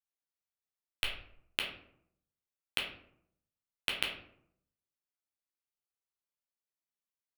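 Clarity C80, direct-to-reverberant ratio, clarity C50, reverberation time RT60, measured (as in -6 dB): 9.5 dB, -0.5 dB, 6.0 dB, 0.70 s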